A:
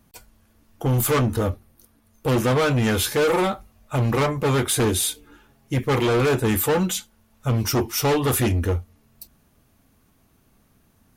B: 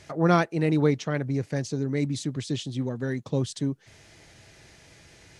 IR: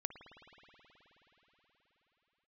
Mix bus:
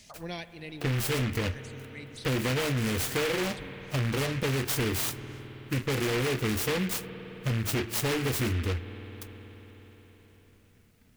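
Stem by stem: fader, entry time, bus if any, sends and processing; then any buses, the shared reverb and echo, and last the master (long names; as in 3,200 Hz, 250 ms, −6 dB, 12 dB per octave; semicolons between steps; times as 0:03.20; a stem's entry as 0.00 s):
−5.0 dB, 0.00 s, send −5 dB, parametric band 1,200 Hz −13.5 dB 0.77 octaves; short delay modulated by noise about 1,900 Hz, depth 0.21 ms
−8.5 dB, 0.00 s, send −6 dB, tilt shelving filter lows −9.5 dB; phaser swept by the level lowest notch 190 Hz, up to 1,300 Hz, full sweep at −26 dBFS; automatic ducking −10 dB, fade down 0.45 s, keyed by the first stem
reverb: on, pre-delay 53 ms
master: downward compressor, threshold −26 dBFS, peak gain reduction 6.5 dB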